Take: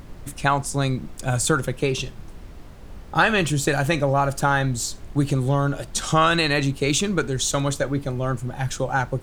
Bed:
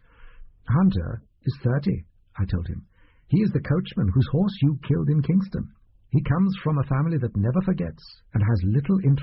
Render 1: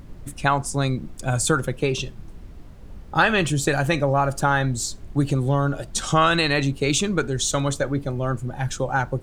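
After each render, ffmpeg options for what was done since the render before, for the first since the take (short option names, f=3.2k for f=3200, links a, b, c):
-af "afftdn=nr=6:nf=-41"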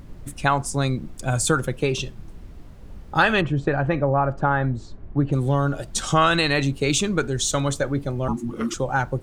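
-filter_complex "[0:a]asplit=3[a][b][c];[a]afade=t=out:st=3.4:d=0.02[d];[b]lowpass=1.6k,afade=t=in:st=3.4:d=0.02,afade=t=out:st=5.32:d=0.02[e];[c]afade=t=in:st=5.32:d=0.02[f];[d][e][f]amix=inputs=3:normalize=0,asettb=1/sr,asplit=3[g][h][i];[g]atrim=end=8.284[j];[h]atrim=start=8.28:end=8.74,asetpts=PTS-STARTPTS,afade=t=in:d=0.004:c=qsin,afade=t=out:st=0.456:d=0.004:c=qsin,afreqshift=-360[k];[i]atrim=start=8.736[l];[j][k]acrossfade=d=0.004:c1=hsin:c2=qsin[m];[m][l]acrossfade=d=0.004:c1=qsin:c2=hsin"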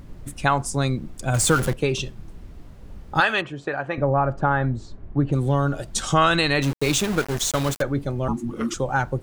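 -filter_complex "[0:a]asettb=1/sr,asplit=3[a][b][c];[a]atrim=end=1.344[d];[b]atrim=start=1.34:end=1.74,asetpts=PTS-STARTPTS,afade=t=in:d=0.004:c=qsin,afade=t=out:st=0.396:d=0.004:c=qsin,aeval=exprs='val(0)+0.5*0.0596*sgn(val(0))':c=same[e];[c]atrim=start=1.736[f];[d][e]acrossfade=d=0.004:c1=hsin:c2=qsin[g];[g][f]acrossfade=d=0.004:c1=qsin:c2=hsin,asettb=1/sr,asplit=3[h][i][j];[h]atrim=end=3.204[k];[i]atrim=start=3.2:end=3.98,asetpts=PTS-STARTPTS,afade=t=in:d=0.004:c=qsin,afade=t=out:st=0.776:d=0.004:c=qsin,highpass=f=680:p=1[l];[j]atrim=start=3.976[m];[k][l]acrossfade=d=0.004:c1=hsin:c2=qsin[n];[n][m]acrossfade=d=0.004:c1=qsin:c2=hsin,asettb=1/sr,asplit=3[o][p][q];[o]atrim=end=6.624[r];[p]atrim=start=6.62:end=7.82,asetpts=PTS-STARTPTS,afade=t=in:d=0.004:c=qsin,afade=t=out:st=1.196:d=0.004:c=qsin,aeval=exprs='val(0)*gte(abs(val(0)),0.0531)':c=same[s];[q]atrim=start=7.816[t];[r][s]acrossfade=d=0.004:c1=hsin:c2=qsin[u];[u][t]acrossfade=d=0.004:c1=qsin:c2=hsin"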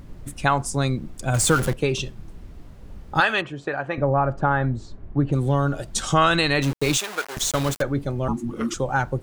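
-filter_complex "[0:a]asettb=1/sr,asplit=3[a][b][c];[a]atrim=end=6.974[d];[b]atrim=start=6.97:end=7.37,asetpts=PTS-STARTPTS,afade=t=in:d=0.004:c=qsin,afade=t=out:st=0.396:d=0.004:c=qsin,highpass=700[e];[c]atrim=start=7.366[f];[d][e]acrossfade=d=0.004:c1=hsin:c2=qsin[g];[g][f]acrossfade=d=0.004:c1=qsin:c2=hsin"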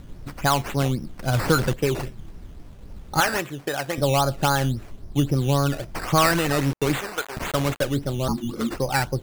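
-filter_complex "[0:a]acrossover=split=1600[a][b];[b]asoftclip=type=tanh:threshold=-26dB[c];[a][c]amix=inputs=2:normalize=0,acrusher=samples=11:mix=1:aa=0.000001:lfo=1:lforange=6.6:lforate=3.7"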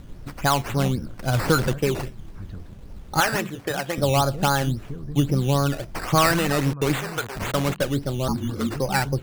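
-filter_complex "[1:a]volume=-13dB[a];[0:a][a]amix=inputs=2:normalize=0"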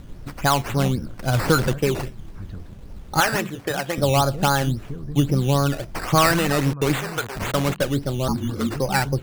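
-af "volume=1.5dB"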